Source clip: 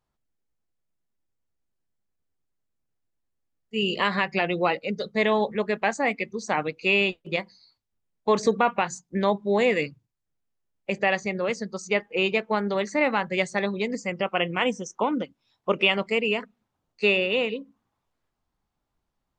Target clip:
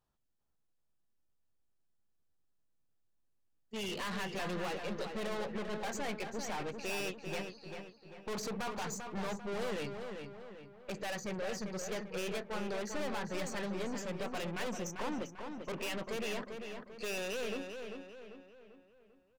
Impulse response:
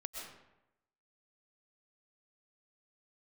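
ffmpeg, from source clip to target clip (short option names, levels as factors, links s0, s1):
-filter_complex "[0:a]bandreject=f=2100:w=7.9,aeval=exprs='(tanh(56.2*val(0)+0.35)-tanh(0.35))/56.2':c=same,asplit=2[s0][s1];[s1]adelay=394,lowpass=f=3600:p=1,volume=0.501,asplit=2[s2][s3];[s3]adelay=394,lowpass=f=3600:p=1,volume=0.47,asplit=2[s4][s5];[s5]adelay=394,lowpass=f=3600:p=1,volume=0.47,asplit=2[s6][s7];[s7]adelay=394,lowpass=f=3600:p=1,volume=0.47,asplit=2[s8][s9];[s9]adelay=394,lowpass=f=3600:p=1,volume=0.47,asplit=2[s10][s11];[s11]adelay=394,lowpass=f=3600:p=1,volume=0.47[s12];[s2][s4][s6][s8][s10][s12]amix=inputs=6:normalize=0[s13];[s0][s13]amix=inputs=2:normalize=0,volume=0.794"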